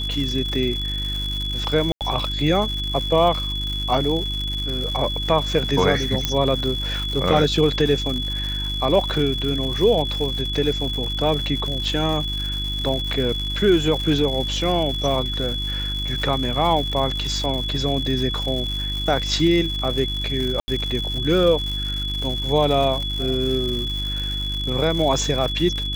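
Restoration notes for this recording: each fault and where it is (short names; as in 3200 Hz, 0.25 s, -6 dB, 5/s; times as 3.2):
crackle 220/s -27 dBFS
hum 50 Hz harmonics 7 -28 dBFS
tone 3400 Hz -26 dBFS
1.92–2.01 gap 88 ms
6.25 pop -5 dBFS
20.6–20.68 gap 80 ms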